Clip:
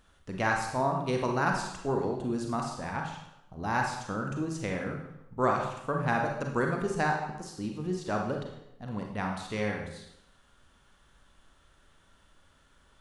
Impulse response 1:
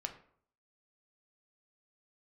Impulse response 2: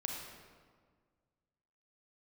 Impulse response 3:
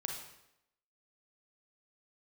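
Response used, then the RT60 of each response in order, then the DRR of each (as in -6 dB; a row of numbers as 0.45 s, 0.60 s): 3; 0.60 s, 1.7 s, 0.80 s; 4.5 dB, 0.0 dB, 1.0 dB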